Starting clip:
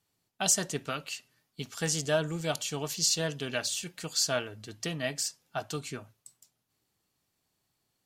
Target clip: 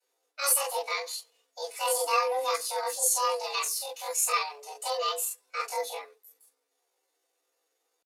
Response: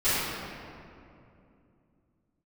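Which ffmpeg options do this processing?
-filter_complex "[0:a]afreqshift=190,aresample=22050,aresample=44100[link_01];[1:a]atrim=start_sample=2205,atrim=end_sample=4410,asetrate=61740,aresample=44100[link_02];[link_01][link_02]afir=irnorm=-1:irlink=0,asetrate=64194,aresample=44100,atempo=0.686977,volume=-6dB"

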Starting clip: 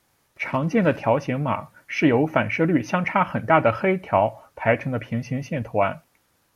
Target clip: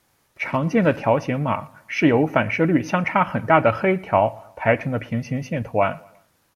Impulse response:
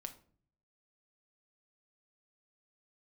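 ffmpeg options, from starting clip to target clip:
-filter_complex "[0:a]asplit=2[link_01][link_02];[link_02]adelay=117,lowpass=frequency=3900:poles=1,volume=-23.5dB,asplit=2[link_03][link_04];[link_04]adelay=117,lowpass=frequency=3900:poles=1,volume=0.46,asplit=2[link_05][link_06];[link_06]adelay=117,lowpass=frequency=3900:poles=1,volume=0.46[link_07];[link_01][link_03][link_05][link_07]amix=inputs=4:normalize=0,volume=1.5dB"

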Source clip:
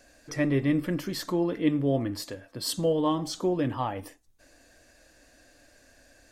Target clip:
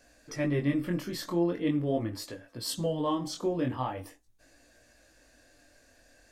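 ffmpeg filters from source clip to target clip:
ffmpeg -i in.wav -af "flanger=delay=17:depth=7:speed=0.42" out.wav

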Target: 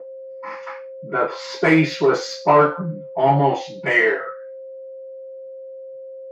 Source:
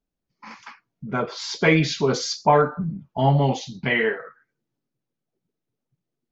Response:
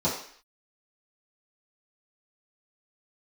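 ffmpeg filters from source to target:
-filter_complex "[0:a]aeval=exprs='val(0)+0.0112*sin(2*PI*530*n/s)':channel_layout=same,asplit=2[link_01][link_02];[link_02]highpass=frequency=720:poles=1,volume=15dB,asoftclip=type=tanh:threshold=-5dB[link_03];[link_01][link_03]amix=inputs=2:normalize=0,lowpass=frequency=4000:poles=1,volume=-6dB[link_04];[1:a]atrim=start_sample=2205,asetrate=88200,aresample=44100[link_05];[link_04][link_05]afir=irnorm=-1:irlink=0,volume=-10dB"

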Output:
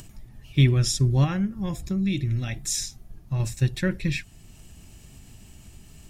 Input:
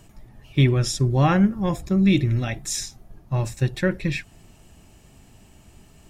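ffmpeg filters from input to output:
ffmpeg -i in.wav -filter_complex "[0:a]asettb=1/sr,asplit=3[link_01][link_02][link_03];[link_01]atrim=end=1.244[link_04];[link_02]atrim=start=1.24:end=3.4,asetpts=PTS-STARTPTS,afade=type=in:duration=0.004:curve=qsin,afade=type=out:start_time=2.156:duration=0.004:curve=qsin,acompressor=threshold=-25dB:ratio=2[link_05];[link_03]atrim=start=3.396[link_06];[link_04][link_05]acrossfade=duration=0.004:curve1=hsin:curve2=qsin[link_07];[link_07][link_06]acrossfade=duration=0.004:curve1=qsin:curve2=hsin,equalizer=frequency=700:width=0.41:gain=-9.5,acompressor=mode=upward:threshold=-42dB:ratio=2.5,volume=2dB" out.wav

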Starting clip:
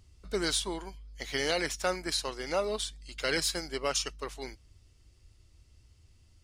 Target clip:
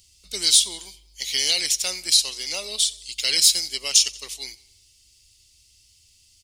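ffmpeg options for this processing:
ffmpeg -i in.wav -af "aecho=1:1:90|180|270|360:0.0841|0.0438|0.0228|0.0118,aexciter=amount=11:drive=5.9:freq=2300,volume=-8dB" out.wav

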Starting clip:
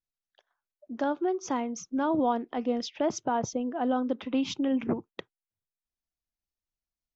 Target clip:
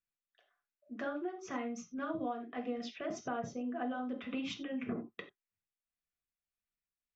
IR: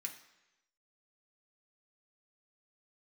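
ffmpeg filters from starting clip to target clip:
-filter_complex "[0:a]asuperstop=centerf=900:order=4:qfactor=5.2,bass=frequency=250:gain=-2,treble=frequency=4000:gain=-11[link_01];[1:a]atrim=start_sample=2205,atrim=end_sample=4410[link_02];[link_01][link_02]afir=irnorm=-1:irlink=0,tremolo=f=1.8:d=0.41,acompressor=threshold=-39dB:ratio=4,volume=4dB"

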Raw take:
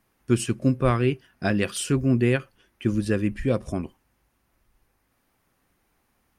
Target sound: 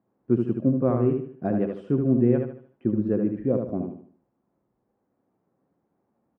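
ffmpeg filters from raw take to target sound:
ffmpeg -i in.wav -af "asuperpass=centerf=320:order=4:qfactor=0.53,aecho=1:1:75|150|225|300|375:0.562|0.208|0.077|0.0285|0.0105" out.wav

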